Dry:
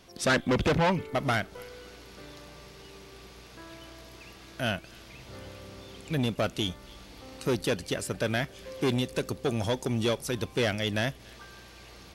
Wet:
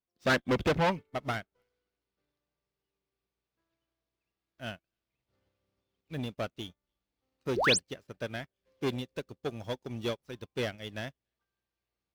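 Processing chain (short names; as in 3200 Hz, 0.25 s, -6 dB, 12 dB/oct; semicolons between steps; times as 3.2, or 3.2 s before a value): median filter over 5 samples; painted sound rise, 7.56–7.79, 300–10000 Hz -24 dBFS; upward expander 2.5:1, over -48 dBFS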